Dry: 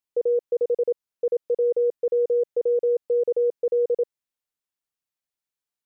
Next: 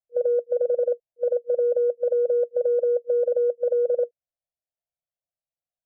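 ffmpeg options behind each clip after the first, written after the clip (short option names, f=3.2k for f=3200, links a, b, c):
-af "afftfilt=real='re*(1-between(b*sr/4096,180,480))':imag='im*(1-between(b*sr/4096,180,480))':win_size=4096:overlap=0.75,adynamicsmooth=sensitivity=0.5:basefreq=530,lowpass=f=680:t=q:w=5.6"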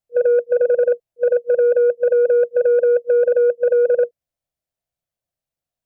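-af "lowshelf=f=390:g=8.5,asoftclip=type=tanh:threshold=-13dB,volume=5dB"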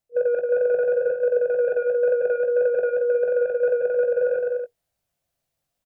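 -filter_complex "[0:a]aecho=1:1:180|324|439.2|531.4|605.1:0.631|0.398|0.251|0.158|0.1,areverse,acompressor=threshold=-25dB:ratio=6,areverse,asplit=2[a][b];[b]adelay=20,volume=-9dB[c];[a][c]amix=inputs=2:normalize=0,volume=5.5dB"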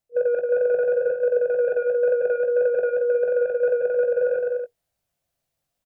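-af anull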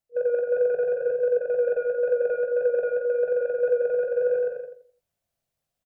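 -filter_complex "[0:a]asplit=2[a][b];[b]adelay=85,lowpass=f=990:p=1,volume=-4.5dB,asplit=2[c][d];[d]adelay=85,lowpass=f=990:p=1,volume=0.34,asplit=2[e][f];[f]adelay=85,lowpass=f=990:p=1,volume=0.34,asplit=2[g][h];[h]adelay=85,lowpass=f=990:p=1,volume=0.34[i];[a][c][e][g][i]amix=inputs=5:normalize=0,volume=-4dB"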